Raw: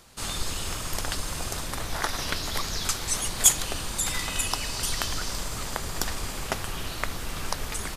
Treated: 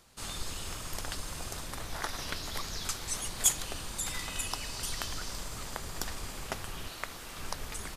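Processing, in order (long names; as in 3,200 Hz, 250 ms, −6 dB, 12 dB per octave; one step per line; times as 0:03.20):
0:06.88–0:07.39: low-shelf EQ 210 Hz −9.5 dB
level −7.5 dB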